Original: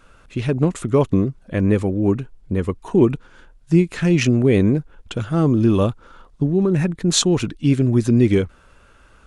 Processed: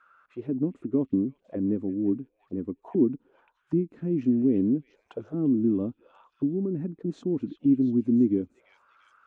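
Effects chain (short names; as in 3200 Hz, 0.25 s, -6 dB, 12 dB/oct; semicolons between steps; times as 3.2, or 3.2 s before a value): delay with a stepping band-pass 0.345 s, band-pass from 2600 Hz, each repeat 0.7 oct, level -6 dB; auto-wah 270–1400 Hz, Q 4, down, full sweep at -18 dBFS; gain -1.5 dB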